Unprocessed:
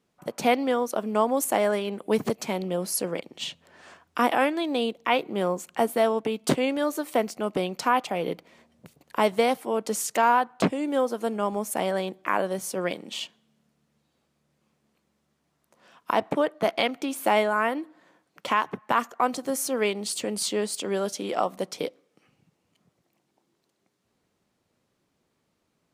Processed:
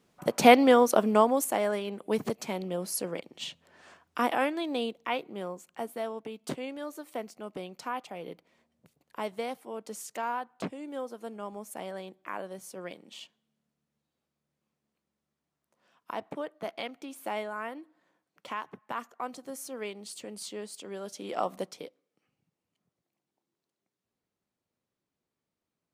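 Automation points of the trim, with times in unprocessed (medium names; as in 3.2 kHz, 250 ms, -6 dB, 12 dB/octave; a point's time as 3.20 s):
1.00 s +5 dB
1.53 s -5 dB
4.79 s -5 dB
5.58 s -12.5 dB
21.00 s -12.5 dB
21.55 s -2.5 dB
21.87 s -14 dB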